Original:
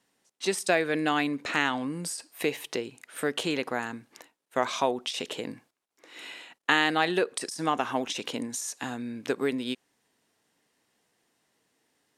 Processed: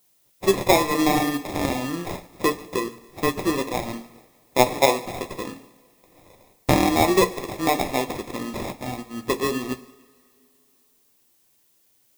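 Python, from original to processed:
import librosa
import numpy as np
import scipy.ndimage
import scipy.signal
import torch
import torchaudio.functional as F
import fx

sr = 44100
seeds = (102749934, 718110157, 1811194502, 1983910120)

p1 = fx.peak_eq(x, sr, hz=2500.0, db=-11.0, octaves=1.3)
p2 = fx.hum_notches(p1, sr, base_hz=60, count=5)
p3 = fx.level_steps(p2, sr, step_db=21)
p4 = p2 + (p3 * librosa.db_to_amplitude(-2.0))
p5 = fx.sample_hold(p4, sr, seeds[0], rate_hz=1500.0, jitter_pct=0)
p6 = fx.dmg_noise_colour(p5, sr, seeds[1], colour='blue', level_db=-58.0)
p7 = p6 + fx.echo_split(p6, sr, split_hz=780.0, low_ms=107, high_ms=144, feedback_pct=52, wet_db=-15, dry=0)
p8 = fx.rev_double_slope(p7, sr, seeds[2], early_s=0.34, late_s=2.8, knee_db=-17, drr_db=5.5)
p9 = fx.upward_expand(p8, sr, threshold_db=-48.0, expansion=1.5)
y = p9 * librosa.db_to_amplitude(8.0)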